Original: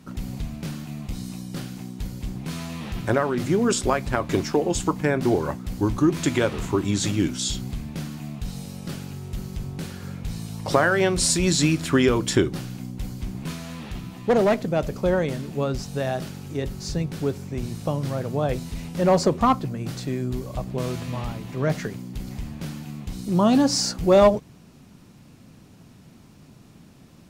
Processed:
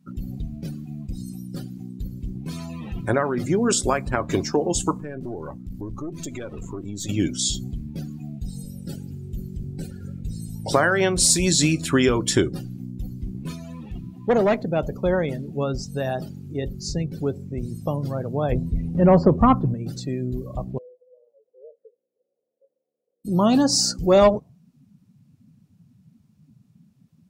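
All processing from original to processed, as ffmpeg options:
ffmpeg -i in.wav -filter_complex "[0:a]asettb=1/sr,asplit=3[link_01][link_02][link_03];[link_01]atrim=end=4.984[link_04];[link_02]atrim=start=4.98:end=7.09,asetpts=PTS-STARTPTS,afade=type=in:duration=0.004:curve=qsin,afade=type=out:start_time=2.106:duration=0.004:curve=qsin,acompressor=threshold=-27dB:ratio=3:attack=3.2:release=140:knee=1:detection=peak,aeval=exprs='(tanh(20*val(0)+0.55)-tanh(0.55))/20':channel_layout=same[link_05];[link_03]atrim=start=7.086[link_06];[link_04][link_05]acrossfade=duration=0.004:curve1=hsin:curve2=qsin[link_07];[link_07][link_06]acrossfade=duration=0.004:curve1=qsin:curve2=hsin,asettb=1/sr,asplit=3[link_08][link_09][link_10];[link_08]atrim=end=8.334[link_11];[link_09]atrim=start=8.33:end=10.73,asetpts=PTS-STARTPTS,afade=type=in:duration=0.004:curve=qsin,afade=type=out:start_time=2.396:duration=0.004:curve=qsin,asuperstop=centerf=1100:order=20:qfactor=3,equalizer=frequency=8000:width_type=o:width=0.22:gain=3,asplit=4[link_12][link_13][link_14][link_15];[link_13]adelay=217,afreqshift=-74,volume=-14dB[link_16];[link_14]adelay=434,afreqshift=-148,volume=-23.6dB[link_17];[link_15]adelay=651,afreqshift=-222,volume=-33.3dB[link_18];[link_12][link_16][link_17][link_18]amix=inputs=4:normalize=0,atrim=end_sample=105840[link_19];[link_10]atrim=start=10.726[link_20];[link_11][link_19]acrossfade=duration=0.004:curve1=hsin:curve2=qsin[link_21];[link_21][link_20]acrossfade=duration=0.004:curve1=qsin:curve2=hsin,asettb=1/sr,asplit=3[link_22][link_23][link_24];[link_22]atrim=end=18.524[link_25];[link_23]atrim=start=18.52:end=19.74,asetpts=PTS-STARTPTS,afade=type=in:duration=0.004:curve=qsin,afade=type=out:start_time=1.216:duration=0.004:curve=qsin,acrossover=split=3000[link_26][link_27];[link_27]acompressor=threshold=-49dB:ratio=4:attack=1:release=60[link_28];[link_26][link_28]amix=inputs=2:normalize=0,lowshelf=frequency=280:gain=9.5[link_29];[link_24]atrim=start=19.736[link_30];[link_25][link_29]acrossfade=duration=0.004:curve1=hsin:curve2=qsin[link_31];[link_31][link_30]acrossfade=duration=0.004:curve1=qsin:curve2=hsin,asettb=1/sr,asplit=3[link_32][link_33][link_34];[link_32]atrim=end=20.784[link_35];[link_33]atrim=start=20.78:end=23.25,asetpts=PTS-STARTPTS,afade=type=in:duration=0.004:curve=qsin,afade=type=out:start_time=2.466:duration=0.004:curve=qsin,asuperpass=centerf=500:order=4:qfactor=4.3,acompressor=threshold=-50dB:ratio=2:attack=3.2:release=140:knee=1:detection=peak[link_36];[link_34]atrim=start=23.246[link_37];[link_35][link_36]acrossfade=duration=0.004:curve1=hsin:curve2=qsin[link_38];[link_38][link_37]acrossfade=duration=0.004:curve1=qsin:curve2=hsin,aemphasis=mode=production:type=50kf,afftdn=noise_reduction=22:noise_floor=-35,highshelf=frequency=7200:gain=-7" out.wav

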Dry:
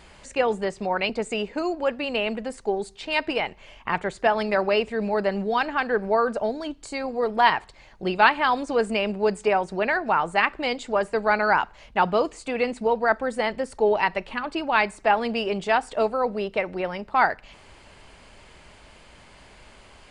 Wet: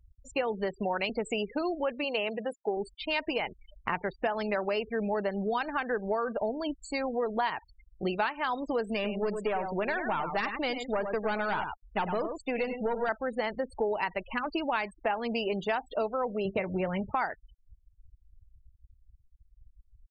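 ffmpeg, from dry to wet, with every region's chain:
ffmpeg -i in.wav -filter_complex "[0:a]asettb=1/sr,asplit=3[link_01][link_02][link_03];[link_01]atrim=end=2.044[link_04];[link_02]atrim=start=2.04:end=2.77,asetpts=PTS-STARTPTS,afade=type=in:duration=0.004:curve=qsin,afade=type=out:start_time=0.726:duration=0.004:curve=qsin,highpass=96,equalizer=frequency=240:width_type=o:width=0.24:gain=-11[link_05];[link_03]atrim=start=2.766[link_06];[link_04][link_05]acrossfade=duration=0.004:curve1=hsin:curve2=qsin[link_07];[link_07][link_06]acrossfade=duration=0.004:curve1=qsin:curve2=hsin,asettb=1/sr,asplit=3[link_08][link_09][link_10];[link_08]atrim=end=8.944[link_11];[link_09]atrim=start=8.94:end=13.09,asetpts=PTS-STARTPTS,afade=type=in:duration=0.004:curve=qsin,afade=type=out:start_time=4.146:duration=0.004:curve=qsin,aeval=exprs='(tanh(7.08*val(0)+0.35)-tanh(0.35))/7.08':channel_layout=same,aecho=1:1:100:0.376,atrim=end_sample=183015[link_12];[link_10]atrim=start=13.086[link_13];[link_11][link_12]acrossfade=duration=0.004:curve1=hsin:curve2=qsin[link_14];[link_14][link_13]acrossfade=duration=0.004:curve1=qsin:curve2=hsin,asettb=1/sr,asplit=3[link_15][link_16][link_17];[link_15]atrim=end=16.454[link_18];[link_16]atrim=start=16.45:end=17.12,asetpts=PTS-STARTPTS,afade=type=in:duration=0.004:curve=qsin,afade=type=out:start_time=0.666:duration=0.004:curve=qsin,equalizer=frequency=120:width=0.83:gain=12.5,asplit=2[link_19][link_20];[link_20]adelay=21,volume=-10dB[link_21];[link_19][link_21]amix=inputs=2:normalize=0,atrim=end_sample=29547[link_22];[link_17]atrim=start=17.116[link_23];[link_18][link_22]acrossfade=duration=0.004:curve1=hsin:curve2=qsin[link_24];[link_24][link_23]acrossfade=duration=0.004:curve1=qsin:curve2=hsin,afftfilt=real='re*gte(hypot(re,im),0.0224)':imag='im*gte(hypot(re,im),0.0224)':win_size=1024:overlap=0.75,acompressor=threshold=-27dB:ratio=6" out.wav

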